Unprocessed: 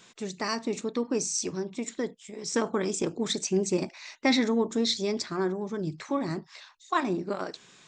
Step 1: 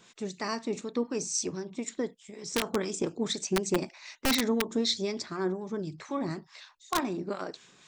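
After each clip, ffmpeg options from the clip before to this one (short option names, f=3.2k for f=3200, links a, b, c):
-filter_complex "[0:a]aeval=exprs='(mod(6.31*val(0)+1,2)-1)/6.31':c=same,acrossover=split=1200[a][b];[a]aeval=exprs='val(0)*(1-0.5/2+0.5/2*cos(2*PI*4*n/s))':c=same[c];[b]aeval=exprs='val(0)*(1-0.5/2-0.5/2*cos(2*PI*4*n/s))':c=same[d];[c][d]amix=inputs=2:normalize=0"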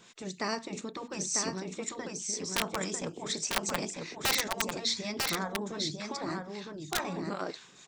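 -af "afftfilt=real='re*lt(hypot(re,im),0.178)':imag='im*lt(hypot(re,im),0.178)':win_size=1024:overlap=0.75,aecho=1:1:947:0.631,volume=1dB"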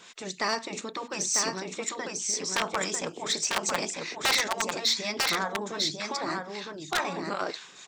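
-filter_complex "[0:a]asplit=2[a][b];[b]aeval=exprs='0.0841*(abs(mod(val(0)/0.0841+3,4)-2)-1)':c=same,volume=-4dB[c];[a][c]amix=inputs=2:normalize=0,asplit=2[d][e];[e]highpass=f=720:p=1,volume=13dB,asoftclip=type=tanh:threshold=-7dB[f];[d][f]amix=inputs=2:normalize=0,lowpass=f=7.1k:p=1,volume=-6dB,volume=-4.5dB"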